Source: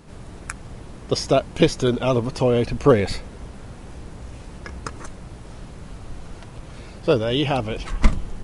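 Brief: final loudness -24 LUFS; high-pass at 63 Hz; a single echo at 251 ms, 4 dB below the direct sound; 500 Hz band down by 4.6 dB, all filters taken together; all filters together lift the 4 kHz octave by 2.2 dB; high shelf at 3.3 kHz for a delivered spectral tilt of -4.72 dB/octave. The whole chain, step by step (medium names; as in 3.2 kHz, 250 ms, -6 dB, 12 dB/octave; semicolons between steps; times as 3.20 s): high-pass 63 Hz; peaking EQ 500 Hz -5.5 dB; treble shelf 3.3 kHz -6 dB; peaking EQ 4 kHz +7.5 dB; delay 251 ms -4 dB; trim -1.5 dB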